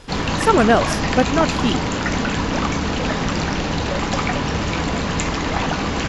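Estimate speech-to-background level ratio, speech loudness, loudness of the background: 2.0 dB, −19.5 LKFS, −21.5 LKFS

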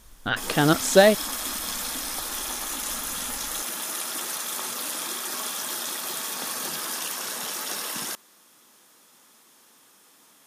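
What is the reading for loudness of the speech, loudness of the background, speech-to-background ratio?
−20.5 LKFS, −29.0 LKFS, 8.5 dB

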